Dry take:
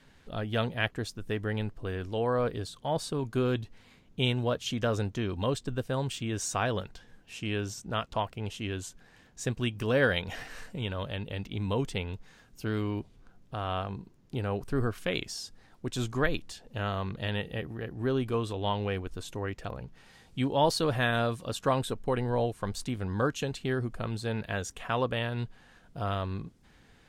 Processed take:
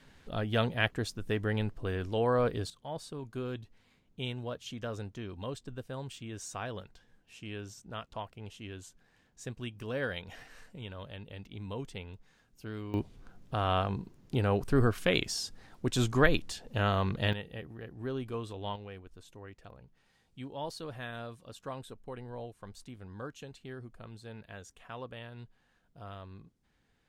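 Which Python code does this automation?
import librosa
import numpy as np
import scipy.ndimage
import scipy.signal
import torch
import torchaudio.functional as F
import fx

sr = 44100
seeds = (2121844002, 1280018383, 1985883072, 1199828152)

y = fx.gain(x, sr, db=fx.steps((0.0, 0.5), (2.7, -9.5), (12.94, 3.5), (17.33, -7.5), (18.76, -14.0)))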